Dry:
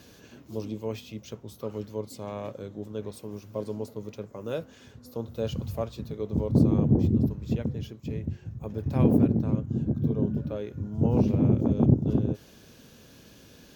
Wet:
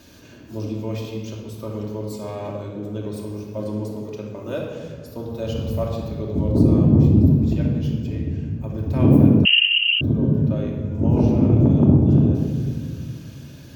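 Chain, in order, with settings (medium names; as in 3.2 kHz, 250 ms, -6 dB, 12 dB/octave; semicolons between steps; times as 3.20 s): simulated room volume 2500 m³, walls mixed, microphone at 2.7 m; 9.45–10.01 s: frequency inversion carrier 3 kHz; trim +1.5 dB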